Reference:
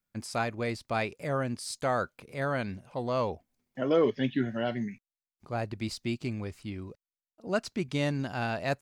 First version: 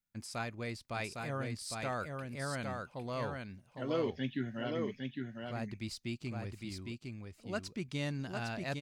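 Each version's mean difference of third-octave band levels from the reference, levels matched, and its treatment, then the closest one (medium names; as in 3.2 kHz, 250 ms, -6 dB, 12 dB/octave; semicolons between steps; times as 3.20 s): 5.0 dB: peaking EQ 580 Hz -5.5 dB 2.5 oct; on a send: delay 807 ms -4 dB; on the sum: trim -5 dB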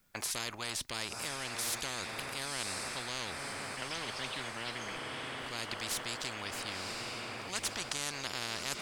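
16.5 dB: on a send: echo that smears into a reverb 1026 ms, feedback 55%, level -13.5 dB; on the sum: spectrum-flattening compressor 10:1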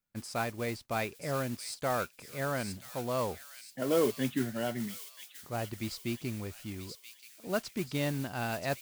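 7.0 dB: modulation noise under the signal 15 dB; on a send: feedback echo behind a high-pass 980 ms, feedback 45%, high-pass 3.1 kHz, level -4.5 dB; on the sum: trim -3 dB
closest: first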